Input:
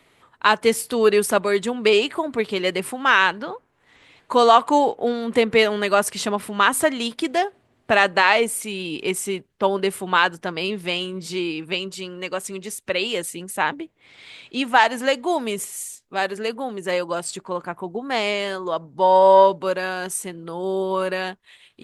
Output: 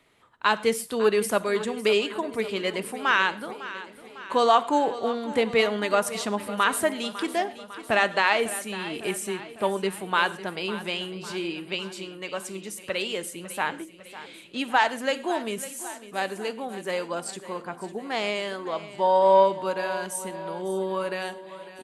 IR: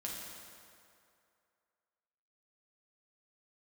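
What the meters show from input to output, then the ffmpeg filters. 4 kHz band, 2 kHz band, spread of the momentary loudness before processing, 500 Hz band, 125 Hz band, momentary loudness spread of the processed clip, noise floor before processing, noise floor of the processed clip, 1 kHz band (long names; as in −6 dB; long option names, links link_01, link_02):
−5.0 dB, −5.0 dB, 13 LU, −5.0 dB, −4.5 dB, 14 LU, −63 dBFS, −47 dBFS, −5.5 dB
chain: -filter_complex "[0:a]aecho=1:1:552|1104|1656|2208|2760|3312:0.178|0.105|0.0619|0.0365|0.0215|0.0127,asplit=2[link_01][link_02];[1:a]atrim=start_sample=2205,atrim=end_sample=6174[link_03];[link_02][link_03]afir=irnorm=-1:irlink=0,volume=-10dB[link_04];[link_01][link_04]amix=inputs=2:normalize=0,volume=-7dB"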